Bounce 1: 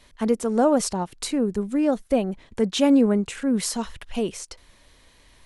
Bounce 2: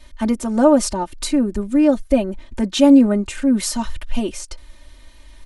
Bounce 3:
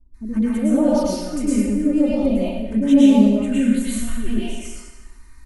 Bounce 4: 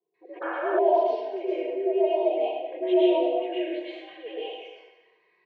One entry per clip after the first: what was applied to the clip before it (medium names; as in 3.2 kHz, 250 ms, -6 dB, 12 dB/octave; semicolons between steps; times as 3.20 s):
bass shelf 85 Hz +10.5 dB; comb 3.3 ms, depth 95%; trim +1 dB
touch-sensitive phaser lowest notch 530 Hz, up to 1.6 kHz, full sweep at -10.5 dBFS; bands offset in time lows, highs 140 ms, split 570 Hz; plate-style reverb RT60 1.1 s, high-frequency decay 0.9×, pre-delay 95 ms, DRR -8.5 dB; trim -8.5 dB
static phaser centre 520 Hz, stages 4; mistuned SSB +86 Hz 230–3100 Hz; painted sound noise, 0.41–0.79 s, 470–1800 Hz -33 dBFS